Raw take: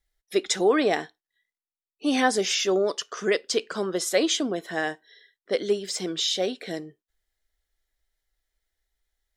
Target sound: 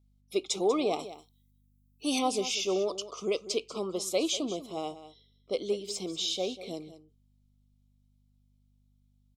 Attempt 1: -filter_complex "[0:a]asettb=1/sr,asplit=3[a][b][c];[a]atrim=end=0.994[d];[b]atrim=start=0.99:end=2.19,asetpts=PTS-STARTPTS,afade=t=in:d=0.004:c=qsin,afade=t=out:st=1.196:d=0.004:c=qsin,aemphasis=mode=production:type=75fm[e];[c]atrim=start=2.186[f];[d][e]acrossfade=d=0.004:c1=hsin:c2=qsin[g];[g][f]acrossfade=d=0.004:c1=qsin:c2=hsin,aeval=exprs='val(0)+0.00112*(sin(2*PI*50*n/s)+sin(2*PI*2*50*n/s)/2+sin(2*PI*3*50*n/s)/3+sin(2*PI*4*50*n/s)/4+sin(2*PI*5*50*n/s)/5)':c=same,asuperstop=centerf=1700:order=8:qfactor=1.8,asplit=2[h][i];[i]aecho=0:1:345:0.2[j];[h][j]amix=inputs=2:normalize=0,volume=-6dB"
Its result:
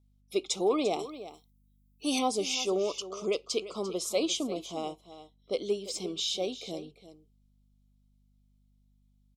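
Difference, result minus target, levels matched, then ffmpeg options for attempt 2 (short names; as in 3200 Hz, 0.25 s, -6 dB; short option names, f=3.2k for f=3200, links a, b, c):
echo 0.153 s late
-filter_complex "[0:a]asettb=1/sr,asplit=3[a][b][c];[a]atrim=end=0.994[d];[b]atrim=start=0.99:end=2.19,asetpts=PTS-STARTPTS,afade=t=in:d=0.004:c=qsin,afade=t=out:st=1.196:d=0.004:c=qsin,aemphasis=mode=production:type=75fm[e];[c]atrim=start=2.186[f];[d][e]acrossfade=d=0.004:c1=hsin:c2=qsin[g];[g][f]acrossfade=d=0.004:c1=qsin:c2=hsin,aeval=exprs='val(0)+0.00112*(sin(2*PI*50*n/s)+sin(2*PI*2*50*n/s)/2+sin(2*PI*3*50*n/s)/3+sin(2*PI*4*50*n/s)/4+sin(2*PI*5*50*n/s)/5)':c=same,asuperstop=centerf=1700:order=8:qfactor=1.8,asplit=2[h][i];[i]aecho=0:1:192:0.2[j];[h][j]amix=inputs=2:normalize=0,volume=-6dB"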